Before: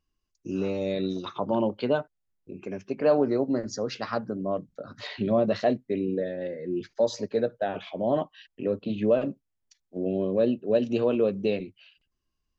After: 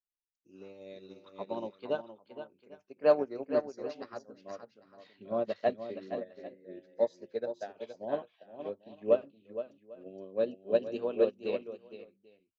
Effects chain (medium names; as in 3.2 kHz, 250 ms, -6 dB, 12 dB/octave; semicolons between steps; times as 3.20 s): tone controls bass -9 dB, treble -1 dB; multi-tap echo 468/798 ms -4.5/-9.5 dB; upward expansion 2.5:1, over -34 dBFS